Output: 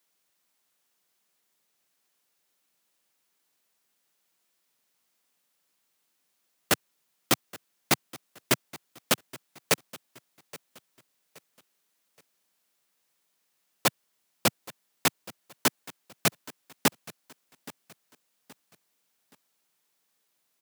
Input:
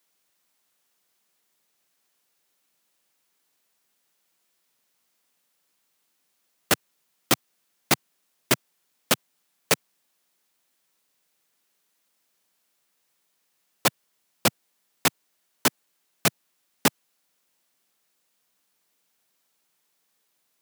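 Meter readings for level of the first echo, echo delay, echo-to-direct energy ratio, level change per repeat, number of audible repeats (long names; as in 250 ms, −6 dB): −20.0 dB, 823 ms, −19.5 dB, −8.5 dB, 2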